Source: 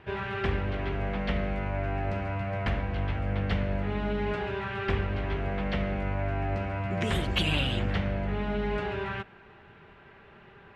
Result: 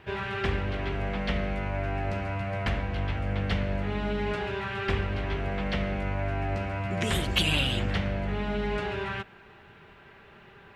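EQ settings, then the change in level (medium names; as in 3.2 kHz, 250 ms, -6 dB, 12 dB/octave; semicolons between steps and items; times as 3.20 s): treble shelf 4.5 kHz +11 dB; 0.0 dB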